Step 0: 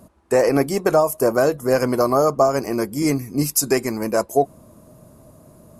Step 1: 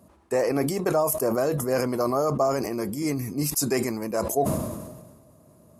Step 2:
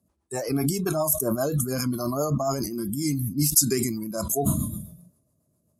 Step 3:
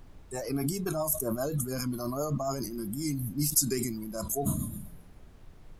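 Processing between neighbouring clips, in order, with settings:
HPF 58 Hz; notch 1500 Hz, Q 20; sustainer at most 42 dB/s; gain -7.5 dB
spectral noise reduction 18 dB; rotary speaker horn 7.5 Hz; tone controls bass +6 dB, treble +10 dB
added noise brown -43 dBFS; gain -6 dB

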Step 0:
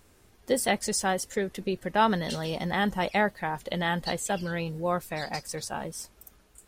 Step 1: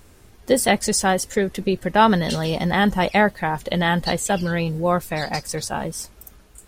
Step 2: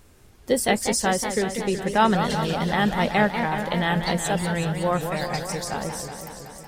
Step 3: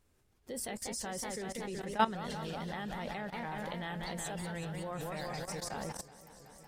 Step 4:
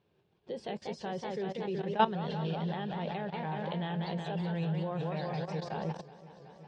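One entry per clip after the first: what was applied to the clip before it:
low shelf 160 Hz +5 dB; gain +7.5 dB
warbling echo 0.186 s, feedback 74%, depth 212 cents, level -8 dB; gain -4 dB
level quantiser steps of 16 dB; gain -7.5 dB
speaker cabinet 150–3700 Hz, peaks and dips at 160 Hz +9 dB, 260 Hz -9 dB, 390 Hz +4 dB, 1300 Hz -8 dB, 2000 Hz -9 dB; gain +4 dB

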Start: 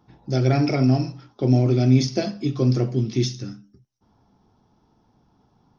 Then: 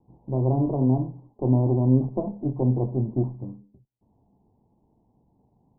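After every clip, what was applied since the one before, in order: minimum comb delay 0.33 ms; steep low-pass 1000 Hz 72 dB/oct; gain -2.5 dB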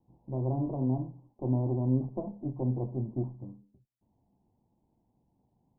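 notch 430 Hz, Q 12; gain -8 dB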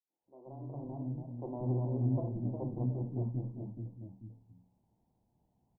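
opening faded in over 1.59 s; bands offset in time highs, lows 0.18 s, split 300 Hz; echoes that change speed 0.229 s, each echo -1 st, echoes 2, each echo -6 dB; gain -3 dB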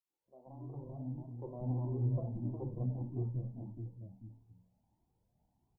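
dynamic EQ 670 Hz, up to -4 dB, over -54 dBFS, Q 2.7; cascading flanger rising 1.6 Hz; gain +2 dB

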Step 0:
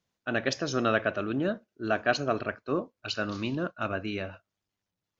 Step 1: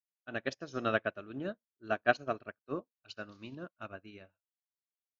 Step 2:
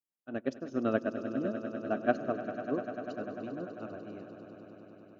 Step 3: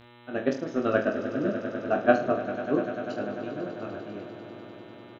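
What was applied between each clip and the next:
upward expander 2.5:1, over -46 dBFS
graphic EQ 250/500/2000/4000 Hz +10/+4/-5/-8 dB; on a send: swelling echo 99 ms, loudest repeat 5, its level -14 dB; on the sum: gain -3 dB
harmonic-percussive split percussive +7 dB; buzz 120 Hz, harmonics 34, -53 dBFS -4 dB/oct; reverse bouncing-ball echo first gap 20 ms, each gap 1.2×, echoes 5

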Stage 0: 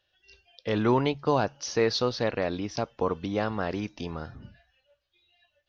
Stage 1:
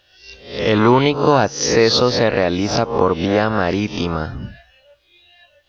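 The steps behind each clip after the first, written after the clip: spectral swells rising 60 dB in 0.50 s; in parallel at +2 dB: compressor, threshold -32 dBFS, peak gain reduction 13.5 dB; on the sum: gain +7.5 dB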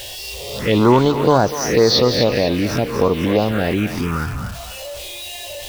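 zero-crossing step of -24.5 dBFS; envelope phaser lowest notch 190 Hz, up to 2800 Hz, full sweep at -8 dBFS; thinning echo 0.247 s, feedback 42%, high-pass 1000 Hz, level -7 dB

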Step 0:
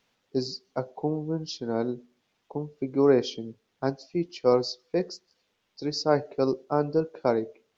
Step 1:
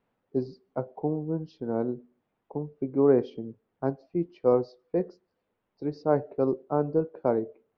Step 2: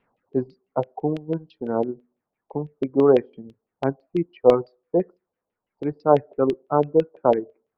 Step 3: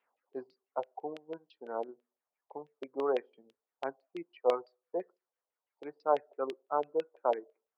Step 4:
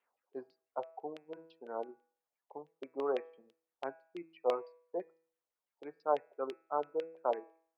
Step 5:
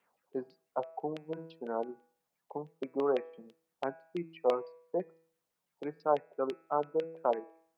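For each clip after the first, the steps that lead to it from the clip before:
Bessel low-pass 1000 Hz, order 2
LFO low-pass saw down 6 Hz 620–3100 Hz; reverb removal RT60 1.7 s; gain +4.5 dB
HPF 630 Hz 12 dB/oct; gain -7.5 dB
de-hum 163.2 Hz, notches 16; gain -3 dB
bell 170 Hz +13.5 dB 0.96 oct; in parallel at +2 dB: compressor, threshold -41 dBFS, peak gain reduction 17 dB

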